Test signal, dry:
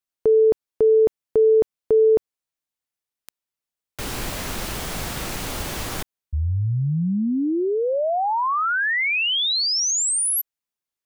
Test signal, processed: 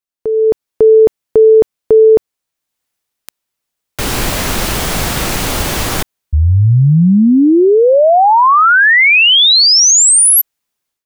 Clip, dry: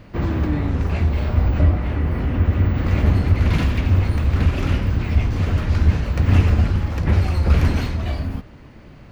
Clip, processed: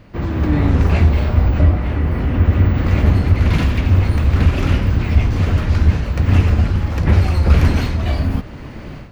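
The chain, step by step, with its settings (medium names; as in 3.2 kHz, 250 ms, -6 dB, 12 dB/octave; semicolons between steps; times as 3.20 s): level rider gain up to 16 dB; trim -1 dB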